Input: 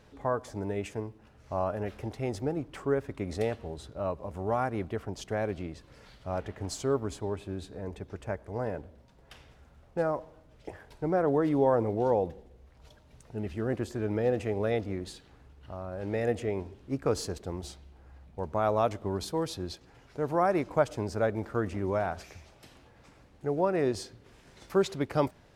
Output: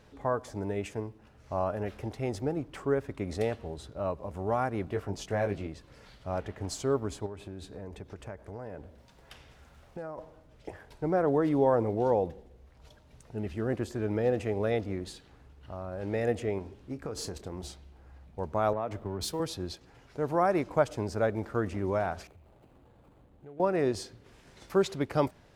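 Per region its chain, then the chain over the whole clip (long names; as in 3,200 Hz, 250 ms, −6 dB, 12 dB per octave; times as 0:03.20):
0:04.85–0:05.67: notch filter 3,200 Hz, Q 27 + double-tracking delay 20 ms −5 dB
0:07.26–0:10.18: downward compressor 5 to 1, threshold −37 dBFS + one half of a high-frequency compander encoder only
0:16.58–0:17.68: downward compressor 12 to 1, threshold −32 dBFS + double-tracking delay 27 ms −13 dB
0:18.73–0:19.40: mu-law and A-law mismatch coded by mu + downward compressor 12 to 1, threshold −28 dBFS + multiband upward and downward expander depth 100%
0:22.27–0:23.60: running median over 25 samples + parametric band 5,500 Hz −7.5 dB 0.61 octaves + downward compressor 2.5 to 1, threshold −54 dBFS
whole clip: no processing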